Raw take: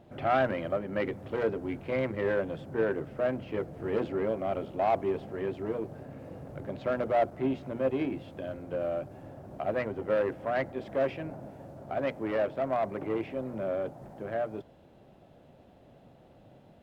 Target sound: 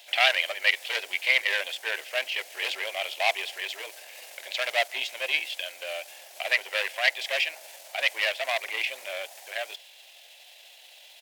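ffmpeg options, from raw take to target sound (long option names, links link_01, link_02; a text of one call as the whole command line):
ffmpeg -i in.wav -af "aexciter=amount=12:drive=6.7:freq=2000,atempo=1.5,highpass=frequency=680:width=0.5412,highpass=frequency=680:width=1.3066,volume=1.5dB" out.wav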